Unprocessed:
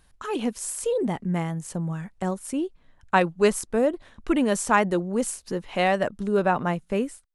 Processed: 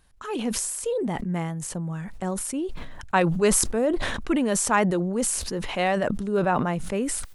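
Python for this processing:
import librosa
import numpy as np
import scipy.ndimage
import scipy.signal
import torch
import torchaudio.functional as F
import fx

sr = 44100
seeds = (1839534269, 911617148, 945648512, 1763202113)

y = fx.sustainer(x, sr, db_per_s=30.0)
y = y * 10.0 ** (-2.0 / 20.0)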